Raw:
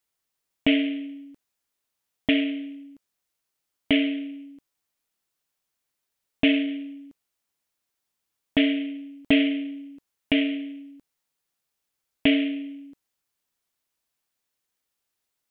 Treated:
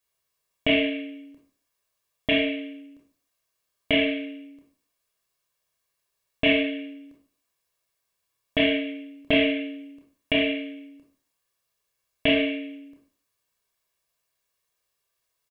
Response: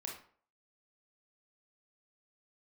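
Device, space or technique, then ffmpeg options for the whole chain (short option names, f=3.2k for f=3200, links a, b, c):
microphone above a desk: -filter_complex "[0:a]aecho=1:1:1.8:0.58[a];[1:a]atrim=start_sample=2205[b];[a][b]afir=irnorm=-1:irlink=0,volume=4dB"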